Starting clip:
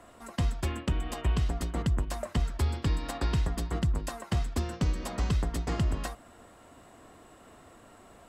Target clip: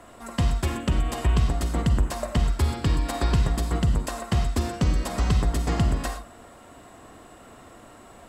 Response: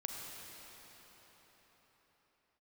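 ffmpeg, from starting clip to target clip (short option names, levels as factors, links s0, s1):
-filter_complex "[1:a]atrim=start_sample=2205,afade=t=out:st=0.16:d=0.01,atrim=end_sample=7497,asetrate=41454,aresample=44100[s0];[0:a][s0]afir=irnorm=-1:irlink=0,volume=2.51"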